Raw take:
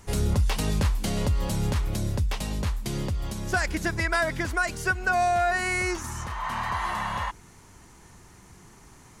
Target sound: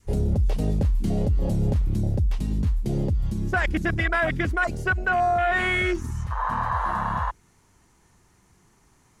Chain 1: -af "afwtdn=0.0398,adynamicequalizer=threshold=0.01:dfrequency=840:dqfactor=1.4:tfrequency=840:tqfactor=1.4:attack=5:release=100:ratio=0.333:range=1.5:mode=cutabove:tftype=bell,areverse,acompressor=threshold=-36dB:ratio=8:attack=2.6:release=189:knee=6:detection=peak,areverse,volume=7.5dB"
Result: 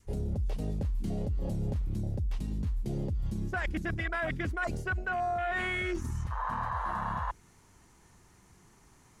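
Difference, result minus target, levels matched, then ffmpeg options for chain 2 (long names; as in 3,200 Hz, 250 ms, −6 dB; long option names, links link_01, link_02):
downward compressor: peak gain reduction +10 dB
-af "afwtdn=0.0398,adynamicequalizer=threshold=0.01:dfrequency=840:dqfactor=1.4:tfrequency=840:tqfactor=1.4:attack=5:release=100:ratio=0.333:range=1.5:mode=cutabove:tftype=bell,areverse,acompressor=threshold=-24.5dB:ratio=8:attack=2.6:release=189:knee=6:detection=peak,areverse,volume=7.5dB"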